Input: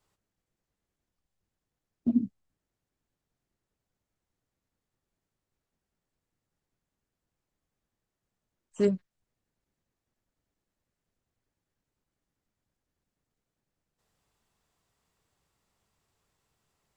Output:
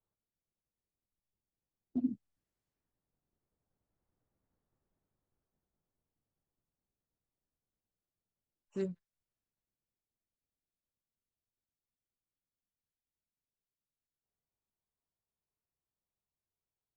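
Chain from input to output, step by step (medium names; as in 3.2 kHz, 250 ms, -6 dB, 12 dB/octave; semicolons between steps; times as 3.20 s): Doppler pass-by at 4.52 s, 19 m/s, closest 18 m; level-controlled noise filter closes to 930 Hz, open at -61.5 dBFS; trim +1.5 dB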